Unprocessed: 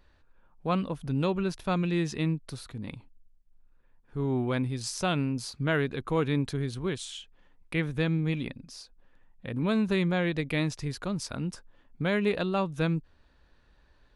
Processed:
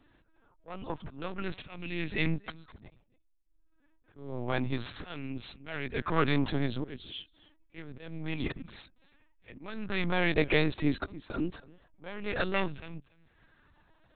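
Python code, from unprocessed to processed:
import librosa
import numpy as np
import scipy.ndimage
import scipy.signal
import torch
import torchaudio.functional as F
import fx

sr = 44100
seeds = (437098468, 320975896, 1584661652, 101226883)

y = fx.diode_clip(x, sr, knee_db=-27.0)
y = fx.peak_eq(y, sr, hz=140.0, db=2.5, octaves=2.3)
y = fx.hpss(y, sr, part='harmonic', gain_db=-9)
y = fx.high_shelf(y, sr, hz=2700.0, db=3.5)
y = fx.leveller(y, sr, passes=1)
y = fx.auto_swell(y, sr, attack_ms=681.0)
y = y + 10.0 ** (-22.0 / 20.0) * np.pad(y, (int(277 * sr / 1000.0), 0))[:len(y)]
y = fx.lpc_vocoder(y, sr, seeds[0], excitation='pitch_kept', order=10)
y = fx.bell_lfo(y, sr, hz=0.27, low_hz=300.0, high_hz=2500.0, db=7)
y = y * 10.0 ** (4.0 / 20.0)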